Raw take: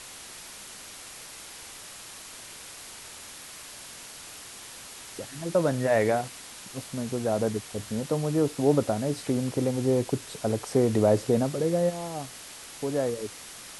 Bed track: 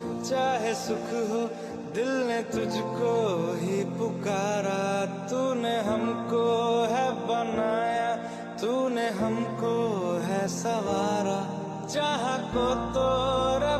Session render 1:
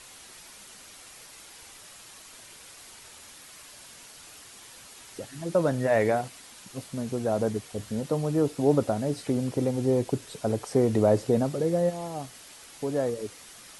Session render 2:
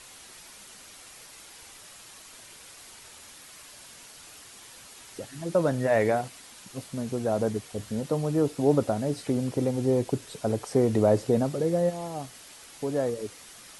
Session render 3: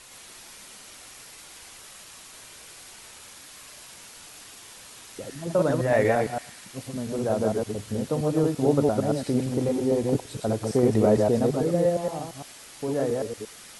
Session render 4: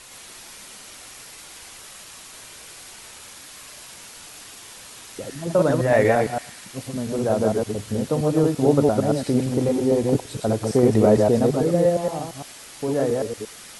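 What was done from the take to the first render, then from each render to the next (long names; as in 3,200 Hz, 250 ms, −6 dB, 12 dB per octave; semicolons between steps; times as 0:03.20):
broadband denoise 6 dB, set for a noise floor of −44 dBFS
no processing that can be heard
delay that plays each chunk backwards 114 ms, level −1.5 dB; feedback echo with a band-pass in the loop 106 ms, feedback 77%, band-pass 2,500 Hz, level −15.5 dB
level +4 dB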